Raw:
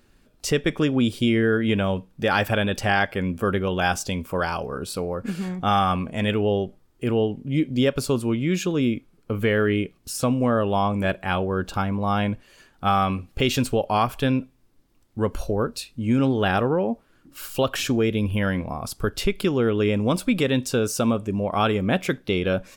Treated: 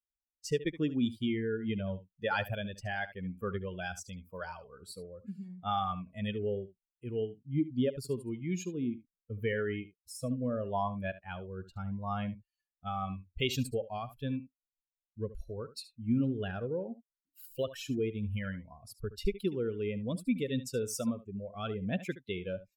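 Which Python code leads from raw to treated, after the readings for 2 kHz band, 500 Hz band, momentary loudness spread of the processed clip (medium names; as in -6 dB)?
-14.0 dB, -12.5 dB, 12 LU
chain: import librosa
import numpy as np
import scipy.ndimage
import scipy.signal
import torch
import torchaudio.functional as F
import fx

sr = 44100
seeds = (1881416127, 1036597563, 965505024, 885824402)

y = fx.bin_expand(x, sr, power=2.0)
y = y + 10.0 ** (-15.5 / 20.0) * np.pad(y, (int(72 * sr / 1000.0), 0))[:len(y)]
y = fx.rotary(y, sr, hz=0.8)
y = F.gain(torch.from_numpy(y), -5.0).numpy()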